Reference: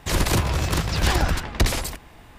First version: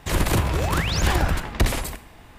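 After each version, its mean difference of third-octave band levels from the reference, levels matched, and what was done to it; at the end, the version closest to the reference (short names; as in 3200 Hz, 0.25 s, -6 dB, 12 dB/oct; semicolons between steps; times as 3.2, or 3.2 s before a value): 1.5 dB: dynamic EQ 5200 Hz, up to -6 dB, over -41 dBFS, Q 1.2; painted sound rise, 0.52–1.02, 280–7400 Hz -30 dBFS; Schroeder reverb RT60 0.56 s, combs from 28 ms, DRR 13.5 dB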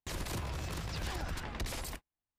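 5.0 dB: gate -34 dBFS, range -44 dB; compressor, threshold -22 dBFS, peak gain reduction 7.5 dB; limiter -23.5 dBFS, peak gain reduction 9 dB; gain -7 dB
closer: first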